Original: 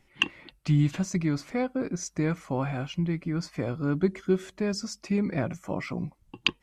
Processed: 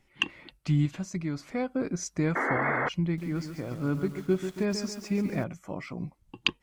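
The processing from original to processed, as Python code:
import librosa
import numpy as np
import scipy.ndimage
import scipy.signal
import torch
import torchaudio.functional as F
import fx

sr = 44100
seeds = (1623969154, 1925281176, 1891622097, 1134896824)

y = fx.tremolo_random(x, sr, seeds[0], hz=3.5, depth_pct=55)
y = fx.spec_paint(y, sr, seeds[1], shape='noise', start_s=2.35, length_s=0.54, low_hz=210.0, high_hz=2200.0, level_db=-28.0)
y = fx.echo_crushed(y, sr, ms=138, feedback_pct=55, bits=8, wet_db=-8.0, at=(3.04, 5.44))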